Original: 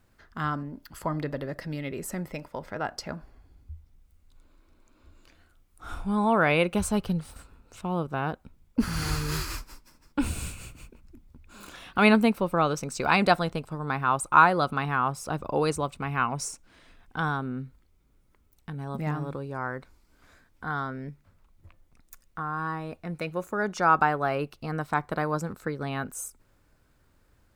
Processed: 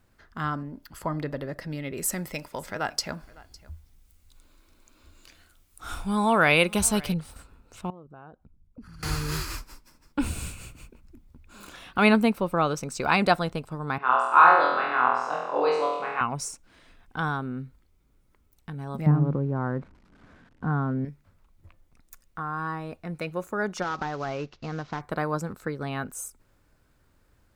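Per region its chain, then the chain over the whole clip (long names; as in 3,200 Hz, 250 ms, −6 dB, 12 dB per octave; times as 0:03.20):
0:01.97–0:07.14: high-shelf EQ 2,300 Hz +11.5 dB + single-tap delay 556 ms −22 dB
0:07.90–0:09.03: spectral envelope exaggerated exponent 1.5 + downward compressor 3 to 1, threshold −49 dBFS
0:13.98–0:16.21: high-pass filter 480 Hz + high-frequency loss of the air 190 metres + flutter between parallel walls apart 4.1 metres, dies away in 0.96 s
0:19.06–0:21.05: spike at every zero crossing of −33.5 dBFS + low-pass filter 1,300 Hz + parametric band 180 Hz +12.5 dB 2 octaves
0:23.82–0:25.01: variable-slope delta modulation 32 kbit/s + downward compressor 4 to 1, threshold −27 dBFS
whole clip: no processing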